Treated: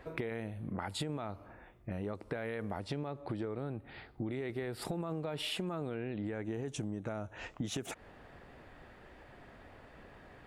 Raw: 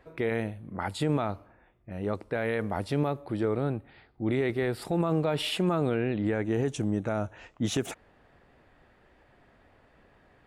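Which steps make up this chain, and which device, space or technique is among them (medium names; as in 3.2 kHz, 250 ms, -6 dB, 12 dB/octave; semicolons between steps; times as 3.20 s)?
2.80–3.58 s: low-pass 7.7 kHz 12 dB/octave; serial compression, peaks first (compression, threshold -36 dBFS, peak gain reduction 13.5 dB; compression 2:1, threshold -43 dBFS, peak gain reduction 6 dB); trim +5.5 dB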